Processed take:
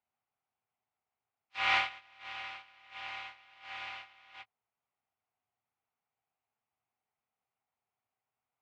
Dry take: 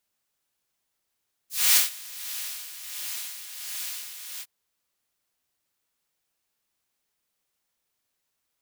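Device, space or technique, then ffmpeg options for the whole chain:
bass cabinet: -af "agate=range=0.282:threshold=0.0158:ratio=16:detection=peak,highpass=81,equalizer=f=110:t=q:w=4:g=5,equalizer=f=180:t=q:w=4:g=-6,equalizer=f=320:t=q:w=4:g=-9,equalizer=f=540:t=q:w=4:g=-6,equalizer=f=760:t=q:w=4:g=9,equalizer=f=1700:t=q:w=4:g=-8,lowpass=f=2300:w=0.5412,lowpass=f=2300:w=1.3066,volume=2.24"

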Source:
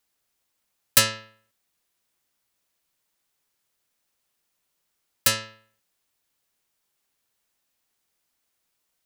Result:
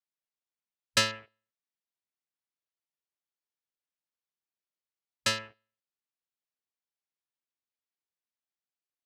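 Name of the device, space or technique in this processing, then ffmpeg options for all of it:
over-cleaned archive recording: -af "highpass=110,lowpass=5700,afwtdn=0.00708,volume=0.668"

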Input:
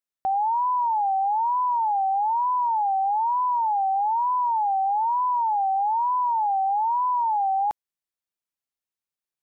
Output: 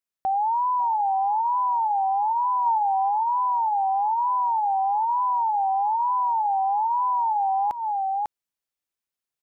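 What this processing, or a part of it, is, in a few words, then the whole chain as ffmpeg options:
ducked delay: -filter_complex "[0:a]asplit=3[s0][s1][s2];[s1]adelay=548,volume=0.75[s3];[s2]apad=whole_len=440011[s4];[s3][s4]sidechaincompress=threshold=0.0178:ratio=8:attack=16:release=176[s5];[s0][s5]amix=inputs=2:normalize=0,asettb=1/sr,asplit=3[s6][s7][s8];[s6]atrim=end=2.664[s9];[s7]atrim=start=2.66:end=3.09,asetpts=PTS-STARTPTS,afade=t=in:d=0.004:c=qsin,afade=t=out:st=0.426:d=0.004:c=qsin,equalizer=f=1000:t=o:w=0.24:g=4.5[s10];[s8]atrim=start=3.086[s11];[s9][s10]acrossfade=d=0.004:c1=hsin:c2=qsin[s12];[s12][s11]acrossfade=d=0.004:c1=qsin:c2=hsin"

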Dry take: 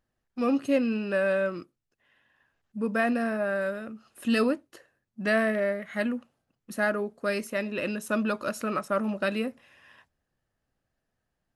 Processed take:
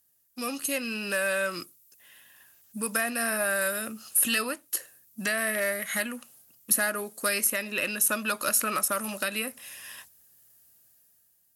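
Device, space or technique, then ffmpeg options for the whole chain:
FM broadcast chain: -filter_complex "[0:a]highpass=63,dynaudnorm=f=210:g=9:m=2.99,acrossover=split=780|2900[s0][s1][s2];[s0]acompressor=threshold=0.0316:ratio=4[s3];[s1]acompressor=threshold=0.0631:ratio=4[s4];[s2]acompressor=threshold=0.00447:ratio=4[s5];[s3][s4][s5]amix=inputs=3:normalize=0,aemphasis=mode=production:type=75fm,alimiter=limit=0.2:level=0:latency=1:release=378,asoftclip=type=hard:threshold=0.158,lowpass=f=15000:w=0.5412,lowpass=f=15000:w=1.3066,aemphasis=mode=production:type=75fm,volume=0.668"

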